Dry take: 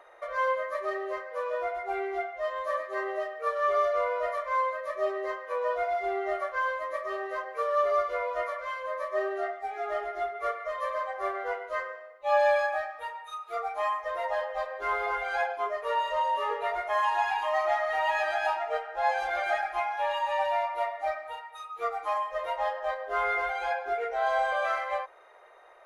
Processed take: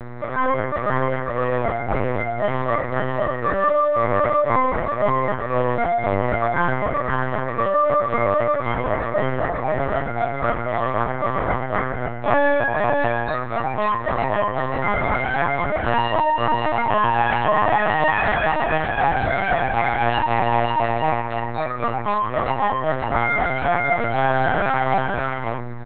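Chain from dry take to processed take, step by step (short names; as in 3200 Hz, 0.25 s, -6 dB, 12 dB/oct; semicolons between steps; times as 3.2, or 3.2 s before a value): in parallel at +0.5 dB: limiter -22 dBFS, peak gain reduction 8.5 dB; on the sum: buzz 120 Hz, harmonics 18, -35 dBFS -6 dB/oct; vibrato 2.2 Hz 13 cents; echo 0.541 s -3 dB; LPC vocoder at 8 kHz pitch kept; gain +2 dB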